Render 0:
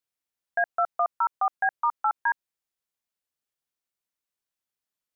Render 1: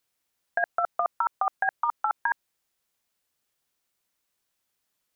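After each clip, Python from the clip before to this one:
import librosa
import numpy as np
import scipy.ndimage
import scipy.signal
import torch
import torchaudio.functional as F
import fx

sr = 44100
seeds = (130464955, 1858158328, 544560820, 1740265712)

y = fx.over_compress(x, sr, threshold_db=-27.0, ratio=-0.5)
y = y * librosa.db_to_amplitude(4.5)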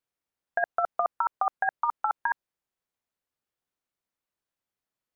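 y = fx.high_shelf(x, sr, hz=2400.0, db=-10.0)
y = fx.upward_expand(y, sr, threshold_db=-40.0, expansion=1.5)
y = y * librosa.db_to_amplitude(2.0)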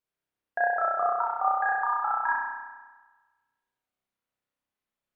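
y = fx.wow_flutter(x, sr, seeds[0], rate_hz=2.1, depth_cents=17.0)
y = fx.rev_spring(y, sr, rt60_s=1.3, pass_ms=(31,), chirp_ms=20, drr_db=-5.0)
y = y * librosa.db_to_amplitude(-4.0)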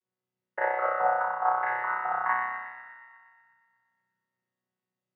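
y = fx.chord_vocoder(x, sr, chord='bare fifth', root=47)
y = fx.echo_wet_highpass(y, sr, ms=120, feedback_pct=66, hz=1900.0, wet_db=-5.5)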